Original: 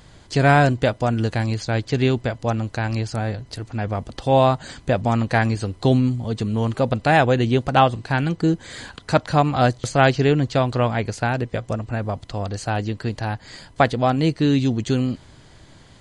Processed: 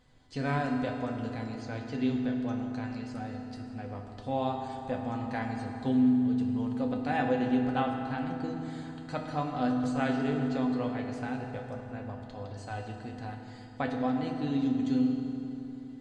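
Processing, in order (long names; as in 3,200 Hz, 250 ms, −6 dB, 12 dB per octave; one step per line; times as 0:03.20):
high-shelf EQ 5,700 Hz −8.5 dB
tuned comb filter 250 Hz, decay 0.15 s, harmonics all, mix 80%
on a send: convolution reverb RT60 3.3 s, pre-delay 4 ms, DRR 2 dB
on the sum: level −7.5 dB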